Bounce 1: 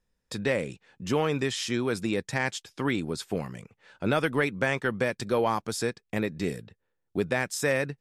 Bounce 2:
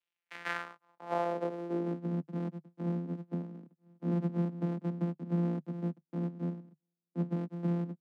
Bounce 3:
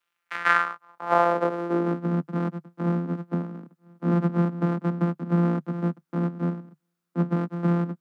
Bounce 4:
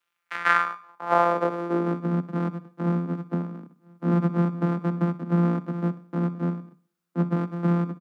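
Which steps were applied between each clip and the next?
samples sorted by size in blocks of 256 samples; Chebyshev high-pass filter 150 Hz, order 6; band-pass filter sweep 2,900 Hz → 220 Hz, 0:00.08–0:02.09; level +2 dB
parametric band 1,300 Hz +11.5 dB 0.88 octaves; level +8.5 dB
repeating echo 63 ms, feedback 46%, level −17 dB

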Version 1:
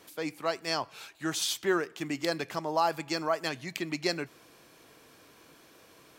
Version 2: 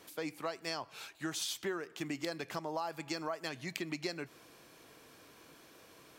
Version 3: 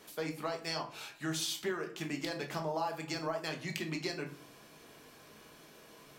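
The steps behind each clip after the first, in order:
downward compressor 6 to 1, threshold −33 dBFS, peak gain reduction 11 dB; level −1.5 dB
rectangular room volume 290 cubic metres, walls furnished, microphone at 1.4 metres

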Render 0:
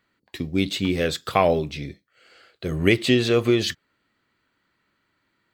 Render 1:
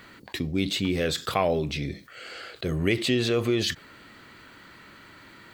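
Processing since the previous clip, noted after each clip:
envelope flattener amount 50%
level −7 dB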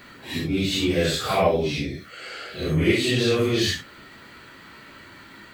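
random phases in long frames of 200 ms
level +4 dB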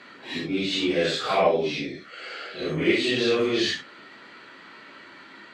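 band-pass filter 250–5,000 Hz

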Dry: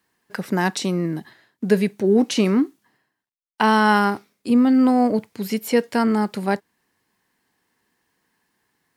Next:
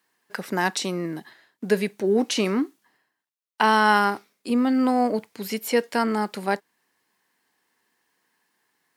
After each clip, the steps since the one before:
high-pass filter 420 Hz 6 dB per octave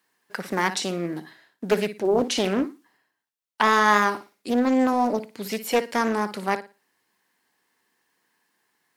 on a send: flutter between parallel walls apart 9.9 metres, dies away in 0.29 s
on the sum: highs frequency-modulated by the lows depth 0.45 ms

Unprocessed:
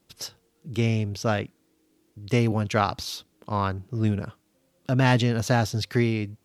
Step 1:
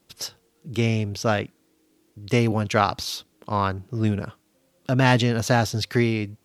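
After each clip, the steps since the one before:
low-shelf EQ 240 Hz −3.5 dB
level +3.5 dB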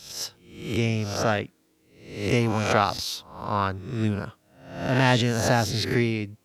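peak hold with a rise ahead of every peak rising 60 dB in 0.66 s
level −3 dB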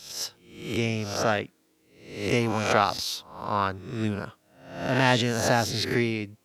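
low-shelf EQ 150 Hz −7.5 dB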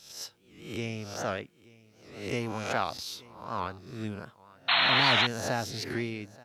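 single-tap delay 880 ms −22.5 dB
sound drawn into the spectrogram noise, 0:04.68–0:05.27, 630–4,300 Hz −16 dBFS
wow of a warped record 78 rpm, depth 160 cents
level −8 dB

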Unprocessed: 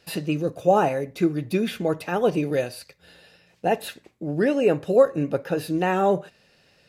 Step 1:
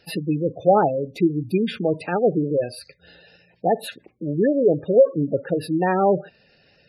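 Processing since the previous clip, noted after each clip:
gate on every frequency bin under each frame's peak −15 dB strong
level +2.5 dB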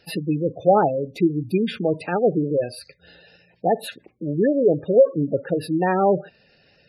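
no processing that can be heard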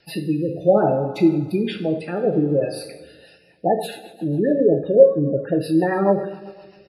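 repeating echo 162 ms, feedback 55%, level −21 dB
coupled-rooms reverb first 0.45 s, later 1.8 s, from −16 dB, DRR 2 dB
rotating-speaker cabinet horn 0.6 Hz, later 7.5 Hz, at 0:02.82
level +1.5 dB

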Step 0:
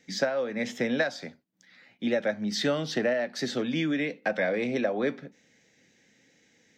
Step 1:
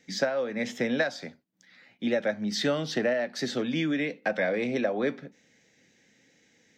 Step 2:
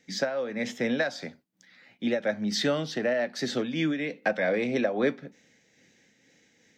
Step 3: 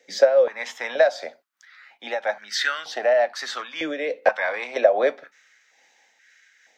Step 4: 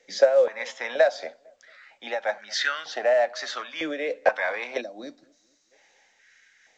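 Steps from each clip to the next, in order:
no processing that can be heard
amplitude modulation by smooth noise, depth 55%; level +3 dB
high-pass on a step sequencer 2.1 Hz 530–1,500 Hz; level +2.5 dB
feedback echo with a low-pass in the loop 226 ms, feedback 40%, low-pass 950 Hz, level −23 dB; gain on a spectral selection 0:04.81–0:05.72, 350–3,700 Hz −21 dB; level −2 dB; A-law companding 128 kbit/s 16,000 Hz

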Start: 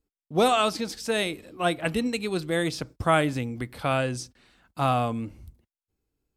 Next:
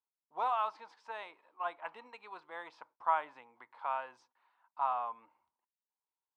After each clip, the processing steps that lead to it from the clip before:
four-pole ladder band-pass 1,000 Hz, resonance 80%
level −1 dB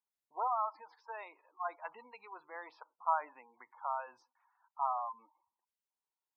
gate on every frequency bin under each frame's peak −15 dB strong
level −1 dB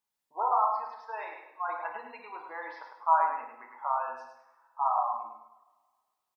on a send: repeating echo 103 ms, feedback 30%, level −6 dB
on the sum: coupled-rooms reverb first 0.58 s, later 1.7 s, from −18 dB, DRR 2.5 dB
level +4.5 dB

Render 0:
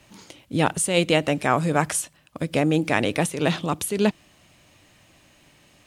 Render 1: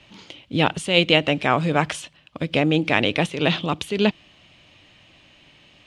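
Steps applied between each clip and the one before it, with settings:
drawn EQ curve 1,700 Hz 0 dB, 3,100 Hz +8 dB, 13,000 Hz −21 dB
level +1 dB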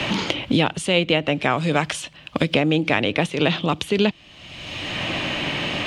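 multiband upward and downward compressor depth 100%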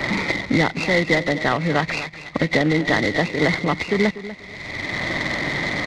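hearing-aid frequency compression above 1,800 Hz 4 to 1
repeating echo 243 ms, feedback 25%, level −14 dB
short delay modulated by noise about 1,700 Hz, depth 0.037 ms

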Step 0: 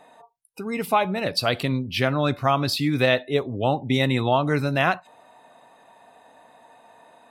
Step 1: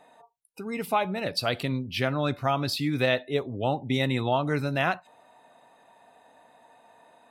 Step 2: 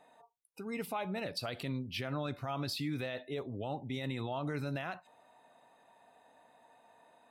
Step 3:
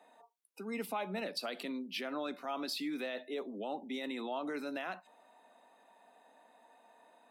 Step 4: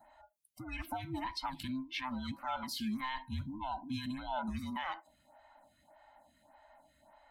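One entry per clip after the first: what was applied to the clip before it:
notch filter 1,100 Hz, Q 22; level −4.5 dB
brickwall limiter −21.5 dBFS, peak gain reduction 11.5 dB; level −6.5 dB
Butterworth high-pass 190 Hz 72 dB per octave
frequency inversion band by band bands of 500 Hz; phaser with staggered stages 1.7 Hz; level +2.5 dB

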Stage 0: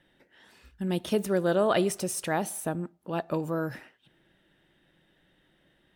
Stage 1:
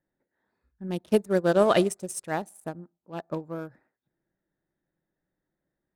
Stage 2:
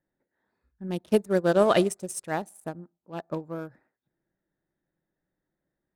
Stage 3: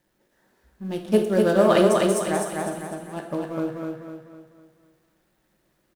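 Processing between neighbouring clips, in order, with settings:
adaptive Wiener filter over 15 samples; dynamic equaliser 8,100 Hz, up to +6 dB, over −52 dBFS, Q 0.91; expander for the loud parts 2.5 to 1, over −36 dBFS; level +6 dB
no processing that can be heard
mu-law and A-law mismatch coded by mu; repeating echo 251 ms, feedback 43%, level −3 dB; dense smooth reverb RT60 0.78 s, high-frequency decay 0.85×, DRR 3.5 dB

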